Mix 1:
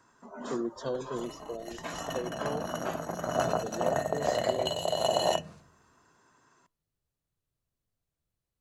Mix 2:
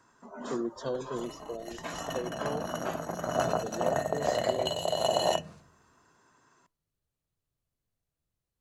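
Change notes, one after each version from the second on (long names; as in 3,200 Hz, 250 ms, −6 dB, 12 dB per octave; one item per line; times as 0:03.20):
nothing changed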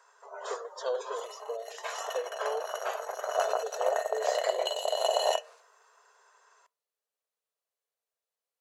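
speech +3.0 dB
master: add linear-phase brick-wall high-pass 400 Hz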